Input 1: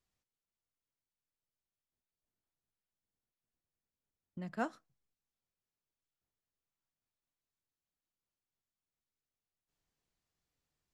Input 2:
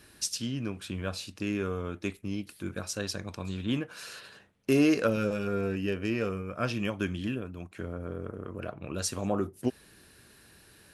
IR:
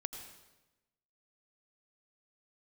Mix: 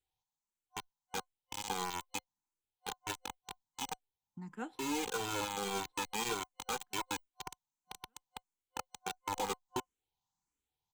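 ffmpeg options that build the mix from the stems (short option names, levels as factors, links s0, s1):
-filter_complex "[0:a]asplit=2[s0][s1];[s1]afreqshift=1.5[s2];[s0][s2]amix=inputs=2:normalize=1,volume=0.75,asplit=3[s3][s4][s5];[s4]volume=0.141[s6];[1:a]acrossover=split=360 3400:gain=0.178 1 0.141[s7][s8][s9];[s7][s8][s9]amix=inputs=3:normalize=0,acrusher=bits=4:mix=0:aa=0.000001,asplit=2[s10][s11];[s11]adelay=2.1,afreqshift=-1.8[s12];[s10][s12]amix=inputs=2:normalize=1,adelay=100,volume=1.19[s13];[s5]apad=whole_len=486661[s14];[s13][s14]sidechaincompress=threshold=0.00501:ratio=8:attack=11:release=1320[s15];[s6]aecho=0:1:1166|2332|3498|4664:1|0.22|0.0484|0.0106[s16];[s3][s15][s16]amix=inputs=3:normalize=0,superequalizer=8b=0.355:9b=3.55:11b=0.631:13b=1.58:15b=2,alimiter=level_in=1.12:limit=0.0631:level=0:latency=1:release=123,volume=0.891"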